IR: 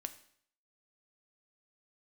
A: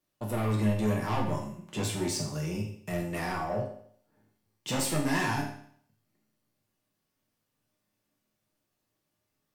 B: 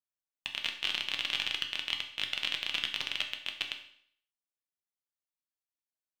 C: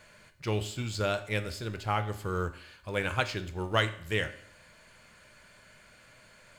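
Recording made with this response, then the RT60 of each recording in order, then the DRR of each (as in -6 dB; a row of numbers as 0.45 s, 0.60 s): C; 0.60 s, 0.60 s, 0.60 s; -2.0 dB, 3.0 dB, 9.0 dB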